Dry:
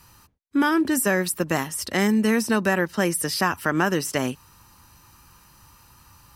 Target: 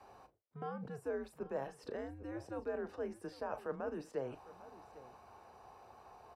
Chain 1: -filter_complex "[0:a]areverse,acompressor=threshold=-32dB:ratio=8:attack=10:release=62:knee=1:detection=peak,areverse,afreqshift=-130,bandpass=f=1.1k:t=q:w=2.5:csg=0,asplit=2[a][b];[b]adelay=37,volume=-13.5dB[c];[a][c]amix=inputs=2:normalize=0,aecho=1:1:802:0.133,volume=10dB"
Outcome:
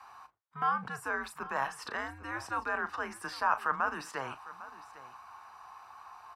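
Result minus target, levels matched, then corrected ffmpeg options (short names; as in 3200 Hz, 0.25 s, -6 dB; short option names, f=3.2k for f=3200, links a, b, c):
500 Hz band -11.5 dB; compressor: peak gain reduction -8.5 dB
-filter_complex "[0:a]areverse,acompressor=threshold=-41.5dB:ratio=8:attack=10:release=62:knee=1:detection=peak,areverse,afreqshift=-130,bandpass=f=500:t=q:w=2.5:csg=0,asplit=2[a][b];[b]adelay=37,volume=-13.5dB[c];[a][c]amix=inputs=2:normalize=0,aecho=1:1:802:0.133,volume=10dB"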